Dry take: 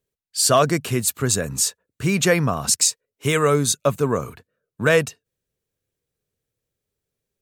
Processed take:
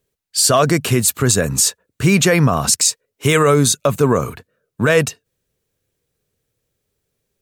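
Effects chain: loudness maximiser +11.5 dB; trim -3 dB

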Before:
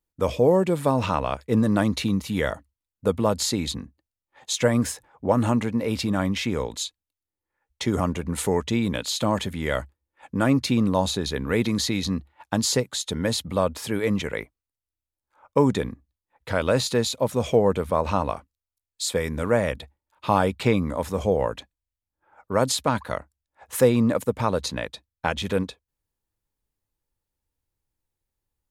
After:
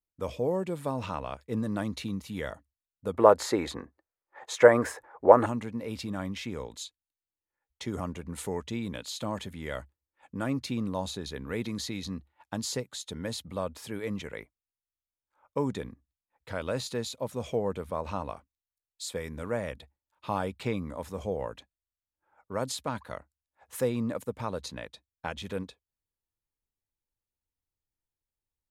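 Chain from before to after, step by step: 3.14–5.46 s: high-order bell 830 Hz +16 dB 3 oct; trim -10.5 dB

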